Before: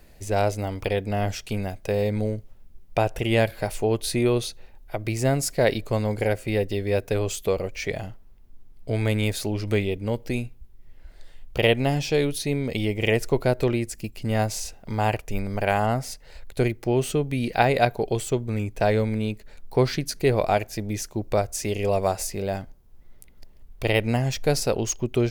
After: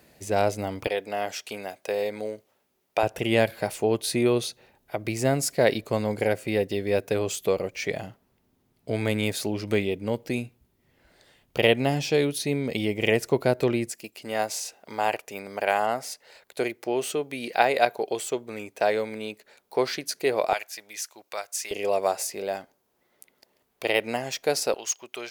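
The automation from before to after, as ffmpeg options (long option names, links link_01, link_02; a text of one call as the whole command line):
ffmpeg -i in.wav -af "asetnsamples=nb_out_samples=441:pad=0,asendcmd='0.87 highpass f 440;3.03 highpass f 150;13.91 highpass f 410;20.53 highpass f 1200;21.71 highpass f 380;24.74 highpass f 960',highpass=140" out.wav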